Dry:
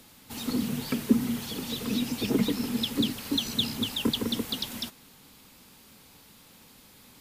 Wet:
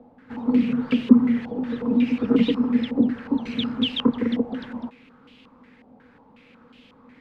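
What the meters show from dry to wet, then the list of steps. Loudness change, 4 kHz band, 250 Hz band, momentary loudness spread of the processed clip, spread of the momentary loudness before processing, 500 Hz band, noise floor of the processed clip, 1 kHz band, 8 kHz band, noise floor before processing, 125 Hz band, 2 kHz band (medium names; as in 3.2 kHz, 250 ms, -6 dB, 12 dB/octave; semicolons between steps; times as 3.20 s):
+7.0 dB, -2.5 dB, +9.0 dB, 13 LU, 7 LU, +7.0 dB, -54 dBFS, +5.0 dB, under -20 dB, -55 dBFS, +1.0 dB, +3.0 dB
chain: small resonant body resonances 250/480 Hz, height 14 dB, ringing for 75 ms; step-sequenced low-pass 5.5 Hz 760–2900 Hz; trim -2 dB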